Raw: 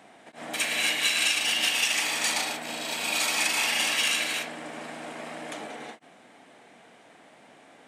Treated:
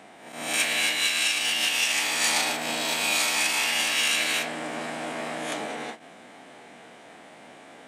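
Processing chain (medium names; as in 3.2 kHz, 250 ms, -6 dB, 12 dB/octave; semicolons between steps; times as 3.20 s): reverse spectral sustain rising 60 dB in 0.59 s; gain riding within 4 dB 0.5 s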